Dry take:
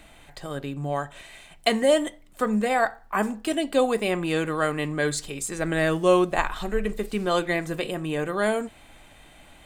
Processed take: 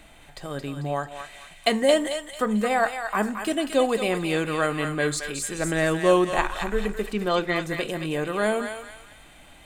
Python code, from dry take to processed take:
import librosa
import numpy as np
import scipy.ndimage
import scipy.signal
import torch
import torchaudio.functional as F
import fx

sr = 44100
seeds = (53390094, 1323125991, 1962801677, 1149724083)

p1 = fx.lowpass(x, sr, hz=6000.0, slope=24, at=(7.13, 7.56))
y = p1 + fx.echo_thinned(p1, sr, ms=222, feedback_pct=43, hz=1200.0, wet_db=-4.5, dry=0)